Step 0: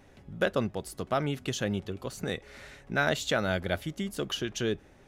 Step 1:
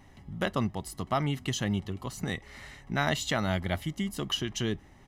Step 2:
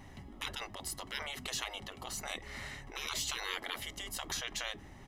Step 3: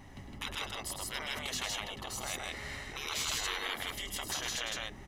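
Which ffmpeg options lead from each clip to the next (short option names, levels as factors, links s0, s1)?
-af "aecho=1:1:1:0.57"
-af "afftfilt=real='re*lt(hypot(re,im),0.0398)':imag='im*lt(hypot(re,im),0.0398)':win_size=1024:overlap=0.75,volume=1.41"
-af "aecho=1:1:105|160.3:0.398|0.891"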